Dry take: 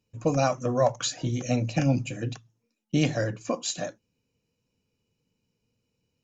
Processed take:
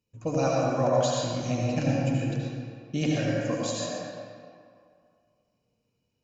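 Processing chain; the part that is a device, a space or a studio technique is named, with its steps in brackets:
stairwell (convolution reverb RT60 2.2 s, pre-delay 69 ms, DRR −4.5 dB)
level −6 dB

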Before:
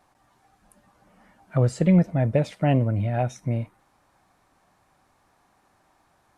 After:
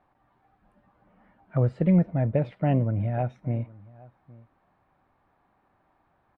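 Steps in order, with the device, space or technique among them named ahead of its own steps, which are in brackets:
shout across a valley (high-frequency loss of the air 450 metres; slap from a distant wall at 140 metres, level −22 dB)
level −2 dB

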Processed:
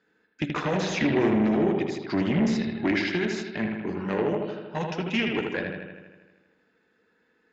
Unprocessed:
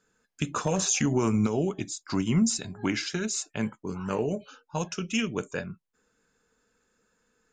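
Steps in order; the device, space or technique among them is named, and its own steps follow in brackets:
analogue delay pedal into a guitar amplifier (bucket-brigade delay 79 ms, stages 2,048, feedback 66%, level −4.5 dB; tube saturation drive 23 dB, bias 0.65; loudspeaker in its box 92–4,300 Hz, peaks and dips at 120 Hz −6 dB, 330 Hz +7 dB, 770 Hz +3 dB, 1,200 Hz −5 dB, 1,900 Hz +8 dB)
level +4.5 dB

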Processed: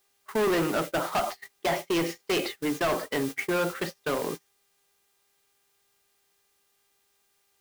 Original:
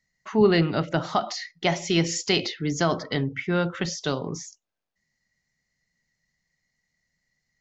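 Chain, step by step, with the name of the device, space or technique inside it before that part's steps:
aircraft radio (band-pass filter 340–2,400 Hz; hard clipping −27.5 dBFS, distortion −5 dB; hum with harmonics 400 Hz, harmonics 31, −52 dBFS −2 dB per octave; white noise bed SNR 12 dB; noise gate −36 dBFS, range −29 dB)
level +5 dB

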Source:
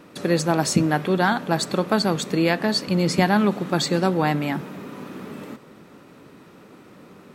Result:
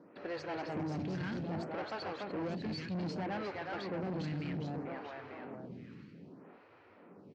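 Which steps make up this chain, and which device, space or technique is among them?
repeating echo 564 ms, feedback 54%, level −22 dB
delay with pitch and tempo change per echo 174 ms, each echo −1 semitone, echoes 3, each echo −6 dB
vibe pedal into a guitar amplifier (phaser with staggered stages 0.63 Hz; tube saturation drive 27 dB, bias 0.4; loudspeaker in its box 84–4,400 Hz, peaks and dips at 99 Hz +9 dB, 1,200 Hz −4 dB, 3,600 Hz −9 dB)
level −7.5 dB

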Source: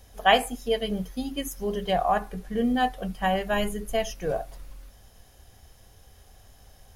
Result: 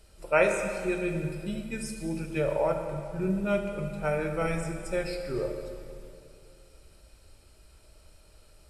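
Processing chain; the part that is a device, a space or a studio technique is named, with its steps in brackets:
slowed and reverbed (speed change −20%; convolution reverb RT60 2.4 s, pre-delay 16 ms, DRR 4.5 dB)
level −4.5 dB

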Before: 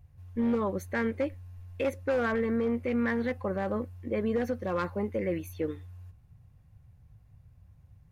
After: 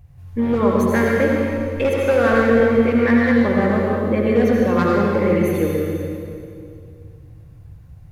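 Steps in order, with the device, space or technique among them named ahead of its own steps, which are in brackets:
stairwell (convolution reverb RT60 2.4 s, pre-delay 68 ms, DRR −3 dB)
level +9 dB

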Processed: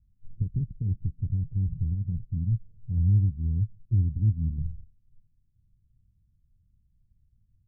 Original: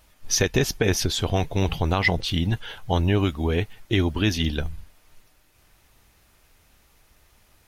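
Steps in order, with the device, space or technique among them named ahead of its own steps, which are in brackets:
the neighbour's flat through the wall (low-pass filter 180 Hz 24 dB per octave; parametric band 110 Hz +5.5 dB 0.6 octaves)
0:02.97–0:04.72: dynamic equaliser 120 Hz, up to +4 dB, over −34 dBFS, Q 0.85
level −5 dB

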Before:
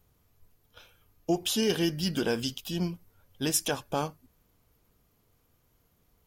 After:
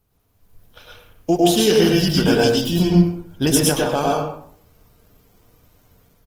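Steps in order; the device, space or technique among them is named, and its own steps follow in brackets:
0:02.52–0:03.69: low-shelf EQ 400 Hz +6 dB
speakerphone in a meeting room (convolution reverb RT60 0.60 s, pre-delay 98 ms, DRR −2 dB; far-end echo of a speakerphone 110 ms, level −11 dB; automatic gain control gain up to 9.5 dB; Opus 20 kbit/s 48,000 Hz)

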